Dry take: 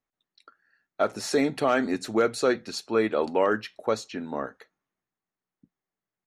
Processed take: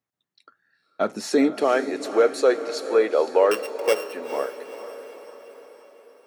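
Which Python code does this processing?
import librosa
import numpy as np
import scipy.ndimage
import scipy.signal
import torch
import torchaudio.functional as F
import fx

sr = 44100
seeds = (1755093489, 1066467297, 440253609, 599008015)

y = fx.sample_sort(x, sr, block=16, at=(3.51, 4.13))
y = fx.filter_sweep_highpass(y, sr, from_hz=110.0, to_hz=470.0, start_s=0.57, end_s=1.86, q=2.1)
y = fx.echo_diffused(y, sr, ms=474, feedback_pct=53, wet_db=-11.5)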